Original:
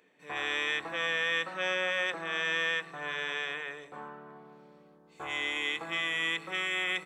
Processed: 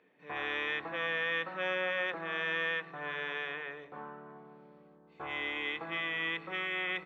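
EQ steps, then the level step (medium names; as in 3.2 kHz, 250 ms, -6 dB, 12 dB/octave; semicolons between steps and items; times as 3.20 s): distance through air 300 m; 0.0 dB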